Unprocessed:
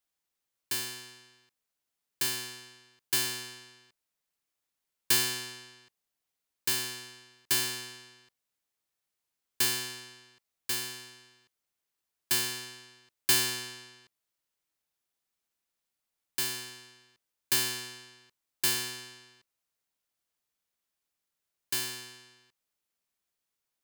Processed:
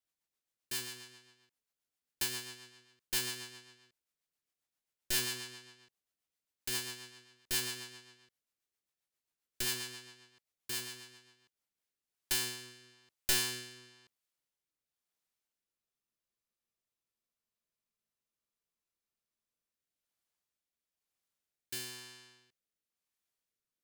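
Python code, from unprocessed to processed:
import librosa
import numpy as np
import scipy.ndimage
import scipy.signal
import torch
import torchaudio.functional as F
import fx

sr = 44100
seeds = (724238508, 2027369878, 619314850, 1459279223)

y = np.minimum(x, 2.0 * 10.0 ** (-22.5 / 20.0) - x)
y = fx.rotary_switch(y, sr, hz=7.5, then_hz=1.0, switch_at_s=11.27)
y = fx.spec_freeze(y, sr, seeds[0], at_s=15.79, hold_s=3.98)
y = y * librosa.db_to_amplitude(-2.5)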